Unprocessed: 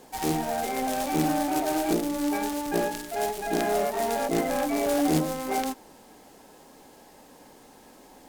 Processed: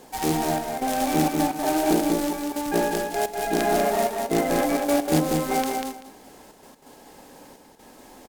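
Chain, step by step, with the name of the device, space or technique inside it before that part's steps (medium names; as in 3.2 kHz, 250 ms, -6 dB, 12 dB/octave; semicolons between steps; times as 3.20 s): trance gate with a delay (trance gate "xxxxx..xxxx.x.x" 129 bpm -12 dB; feedback delay 193 ms, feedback 19%, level -4 dB); trim +3 dB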